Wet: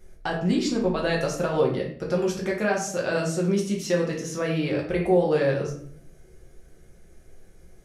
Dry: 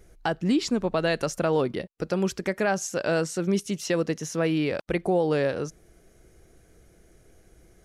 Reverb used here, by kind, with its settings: simulated room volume 76 m³, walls mixed, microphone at 0.96 m; trim -3.5 dB

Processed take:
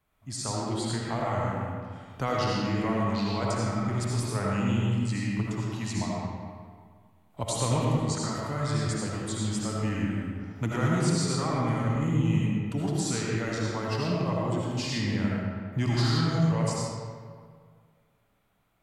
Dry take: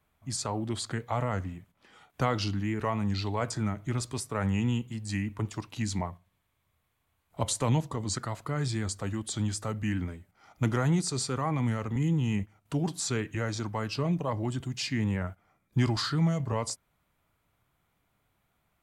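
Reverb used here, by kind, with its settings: algorithmic reverb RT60 1.9 s, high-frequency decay 0.65×, pre-delay 40 ms, DRR -4.5 dB; trim -3 dB

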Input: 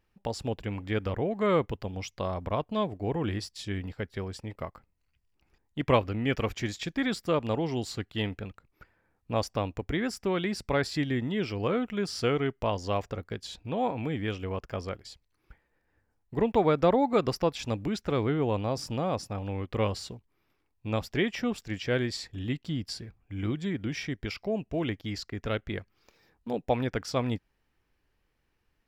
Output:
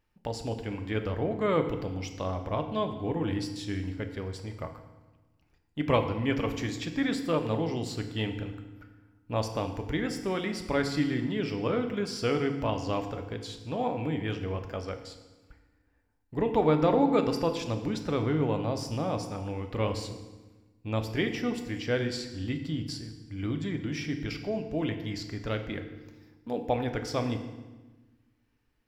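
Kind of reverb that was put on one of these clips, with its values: FDN reverb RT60 1.2 s, low-frequency decay 1.4×, high-frequency decay 0.85×, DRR 5.5 dB; trim -2 dB

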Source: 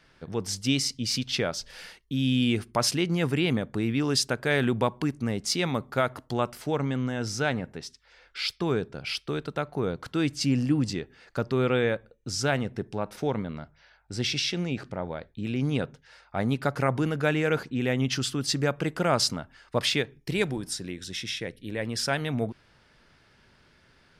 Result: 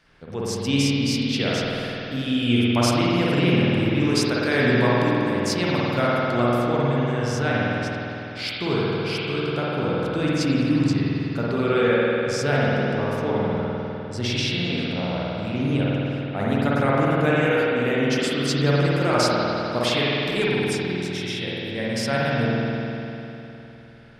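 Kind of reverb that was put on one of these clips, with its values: spring tank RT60 3.3 s, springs 50 ms, chirp 40 ms, DRR -7 dB; trim -1 dB

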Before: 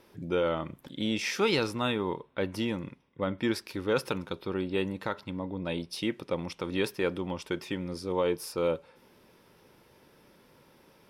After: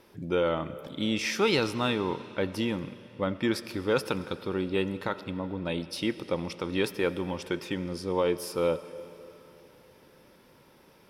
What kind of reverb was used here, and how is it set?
algorithmic reverb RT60 3.2 s, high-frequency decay 0.95×, pre-delay 45 ms, DRR 14.5 dB; trim +1.5 dB

